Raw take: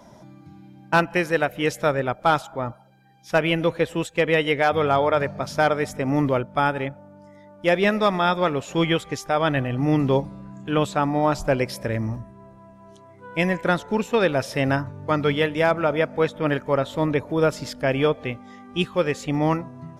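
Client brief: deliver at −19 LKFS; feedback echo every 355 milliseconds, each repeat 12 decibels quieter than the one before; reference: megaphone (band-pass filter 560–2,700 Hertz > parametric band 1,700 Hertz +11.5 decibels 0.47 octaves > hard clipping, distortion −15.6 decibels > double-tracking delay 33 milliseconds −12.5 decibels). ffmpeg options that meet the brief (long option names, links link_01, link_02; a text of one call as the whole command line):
ffmpeg -i in.wav -filter_complex "[0:a]highpass=560,lowpass=2700,equalizer=frequency=1700:width_type=o:width=0.47:gain=11.5,aecho=1:1:355|710|1065:0.251|0.0628|0.0157,asoftclip=type=hard:threshold=-12dB,asplit=2[link_01][link_02];[link_02]adelay=33,volume=-12.5dB[link_03];[link_01][link_03]amix=inputs=2:normalize=0,volume=4dB" out.wav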